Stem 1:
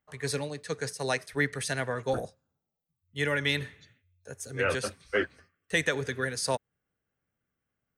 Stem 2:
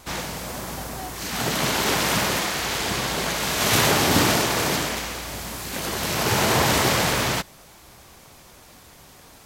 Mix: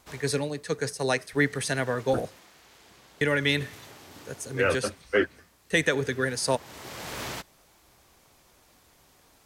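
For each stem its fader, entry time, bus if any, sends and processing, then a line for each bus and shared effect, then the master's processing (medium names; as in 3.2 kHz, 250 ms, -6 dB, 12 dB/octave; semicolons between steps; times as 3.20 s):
+2.5 dB, 0.00 s, muted 2.65–3.21 s, no send, none
-11.5 dB, 0.00 s, no send, peaking EQ 210 Hz -4.5 dB 2 oct; auto duck -18 dB, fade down 0.40 s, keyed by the first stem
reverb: none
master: peaking EQ 300 Hz +4 dB 1.3 oct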